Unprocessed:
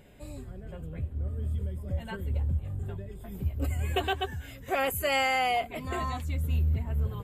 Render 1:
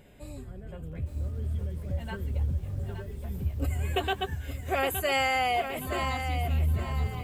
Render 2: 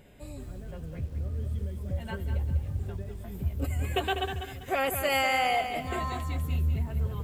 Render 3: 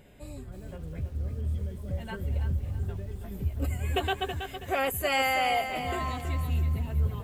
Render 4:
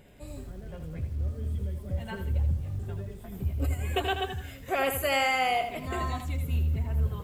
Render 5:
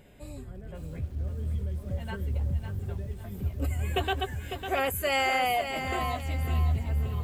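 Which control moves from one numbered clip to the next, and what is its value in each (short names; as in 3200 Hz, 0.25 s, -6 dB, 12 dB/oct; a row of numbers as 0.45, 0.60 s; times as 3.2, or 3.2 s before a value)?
lo-fi delay, time: 867, 197, 325, 81, 551 ms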